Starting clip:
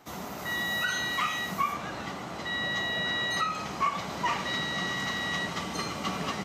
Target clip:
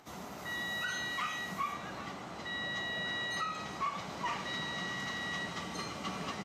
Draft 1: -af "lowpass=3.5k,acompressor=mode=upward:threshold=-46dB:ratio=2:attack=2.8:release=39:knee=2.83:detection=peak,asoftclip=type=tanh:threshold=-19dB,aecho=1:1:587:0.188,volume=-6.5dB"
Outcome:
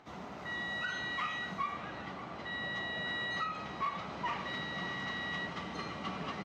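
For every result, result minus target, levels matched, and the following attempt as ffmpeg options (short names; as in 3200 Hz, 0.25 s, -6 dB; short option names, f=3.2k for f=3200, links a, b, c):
echo 0.203 s late; 8000 Hz band -10.5 dB
-af "lowpass=3.5k,acompressor=mode=upward:threshold=-46dB:ratio=2:attack=2.8:release=39:knee=2.83:detection=peak,asoftclip=type=tanh:threshold=-19dB,aecho=1:1:384:0.188,volume=-6.5dB"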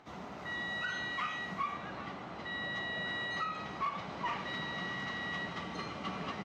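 8000 Hz band -10.5 dB
-af "lowpass=12k,acompressor=mode=upward:threshold=-46dB:ratio=2:attack=2.8:release=39:knee=2.83:detection=peak,asoftclip=type=tanh:threshold=-19dB,aecho=1:1:384:0.188,volume=-6.5dB"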